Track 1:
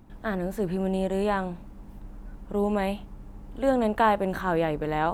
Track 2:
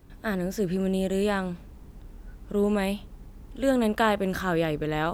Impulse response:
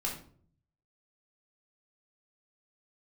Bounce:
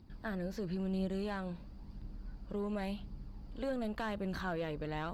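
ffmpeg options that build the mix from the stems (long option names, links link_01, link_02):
-filter_complex "[0:a]highpass=frequency=140:poles=1,acompressor=threshold=-30dB:ratio=6,lowpass=frequency=4700:width_type=q:width=9.7,volume=-6dB[link_01];[1:a]bandreject=frequency=830:width=12,asoftclip=type=tanh:threshold=-22.5dB,volume=-11.5dB[link_02];[link_01][link_02]amix=inputs=2:normalize=0,bass=frequency=250:gain=6,treble=frequency=4000:gain=-2,flanger=delay=0.2:depth=1.9:regen=64:speed=0.96:shape=triangular"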